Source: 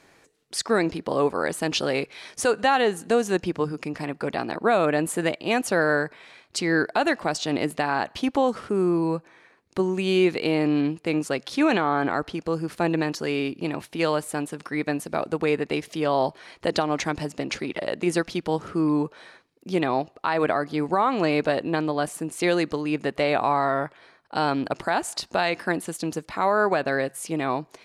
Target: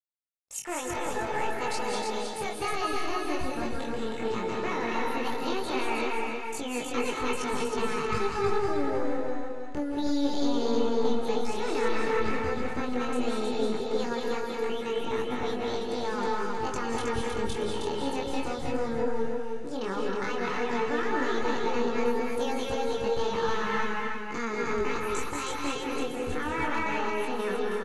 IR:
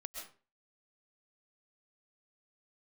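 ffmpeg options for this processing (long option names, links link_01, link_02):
-filter_complex "[0:a]agate=range=-31dB:threshold=-49dB:ratio=16:detection=peak,bandreject=frequency=352.6:width_type=h:width=4,bandreject=frequency=705.2:width_type=h:width=4,bandreject=frequency=1057.8:width_type=h:width=4,bandreject=frequency=1410.4:width_type=h:width=4,asubboost=boost=10.5:cutoff=120,aecho=1:1:3.5:0.38,acompressor=threshold=-27dB:ratio=2,aresample=16000,aeval=exprs='sgn(val(0))*max(abs(val(0))-0.00251,0)':channel_layout=same,aresample=44100,asetrate=68011,aresample=44100,atempo=0.64842,acrossover=split=2500[link_01][link_02];[link_01]aeval=exprs='clip(val(0),-1,0.0266)':channel_layout=same[link_03];[link_03][link_02]amix=inputs=2:normalize=0,flanger=delay=19.5:depth=7.4:speed=0.13,aecho=1:1:316|632|948|1264:0.668|0.207|0.0642|0.0199[link_04];[1:a]atrim=start_sample=2205,afade=type=out:start_time=0.3:duration=0.01,atrim=end_sample=13671,asetrate=29988,aresample=44100[link_05];[link_04][link_05]afir=irnorm=-1:irlink=0,adynamicequalizer=threshold=0.00316:dfrequency=2600:dqfactor=0.7:tfrequency=2600:tqfactor=0.7:attack=5:release=100:ratio=0.375:range=2:mode=cutabove:tftype=highshelf,volume=1.5dB"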